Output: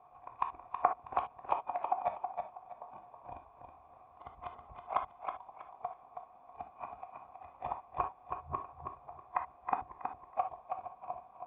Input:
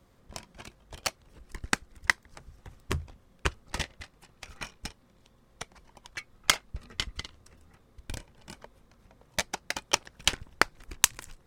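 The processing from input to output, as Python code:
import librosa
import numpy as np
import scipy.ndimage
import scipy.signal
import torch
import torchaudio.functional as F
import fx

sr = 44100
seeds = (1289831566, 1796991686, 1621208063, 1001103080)

p1 = np.flip(x).copy()
p2 = scipy.signal.sosfilt(scipy.signal.butter(2, 65.0, 'highpass', fs=sr, output='sos'), p1)
p3 = 10.0 ** (-12.0 / 20.0) * np.tanh(p2 / 10.0 ** (-12.0 / 20.0))
p4 = p2 + (p3 * 10.0 ** (-3.5 / 20.0))
p5 = fx.quant_dither(p4, sr, seeds[0], bits=8, dither='triangular')
p6 = fx.formant_cascade(p5, sr, vowel='a')
p7 = p6 + fx.echo_feedback(p6, sr, ms=322, feedback_pct=26, wet_db=-6, dry=0)
p8 = fx.rev_gated(p7, sr, seeds[1], gate_ms=90, shape='flat', drr_db=5.5)
y = p8 * 10.0 ** (7.5 / 20.0)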